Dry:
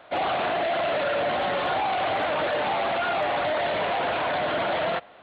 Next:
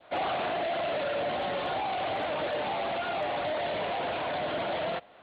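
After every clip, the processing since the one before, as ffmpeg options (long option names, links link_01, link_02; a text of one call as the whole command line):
ffmpeg -i in.wav -af "adynamicequalizer=threshold=0.0112:dfrequency=1400:dqfactor=1:tfrequency=1400:tqfactor=1:attack=5:release=100:ratio=0.375:range=2.5:mode=cutabove:tftype=bell,volume=-4dB" out.wav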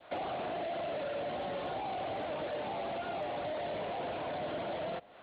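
ffmpeg -i in.wav -filter_complex "[0:a]acrossover=split=710|2400[link_01][link_02][link_03];[link_01]acompressor=threshold=-37dB:ratio=4[link_04];[link_02]acompressor=threshold=-47dB:ratio=4[link_05];[link_03]acompressor=threshold=-54dB:ratio=4[link_06];[link_04][link_05][link_06]amix=inputs=3:normalize=0" out.wav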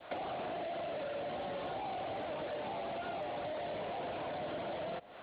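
ffmpeg -i in.wav -af "acompressor=threshold=-42dB:ratio=4,volume=4dB" out.wav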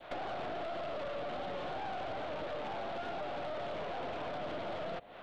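ffmpeg -i in.wav -af "aeval=exprs='(tanh(89.1*val(0)+0.7)-tanh(0.7))/89.1':channel_layout=same,volume=4.5dB" out.wav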